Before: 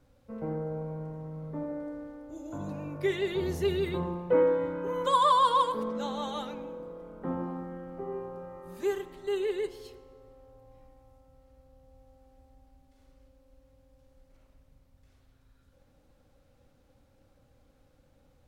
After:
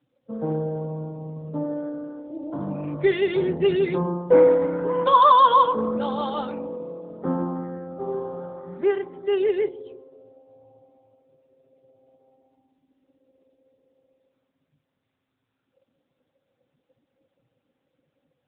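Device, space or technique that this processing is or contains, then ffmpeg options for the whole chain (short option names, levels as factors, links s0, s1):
mobile call with aggressive noise cancelling: -af "highpass=f=120:w=0.5412,highpass=f=120:w=1.3066,afftdn=nr=17:nf=-50,volume=2.66" -ar 8000 -c:a libopencore_amrnb -b:a 10200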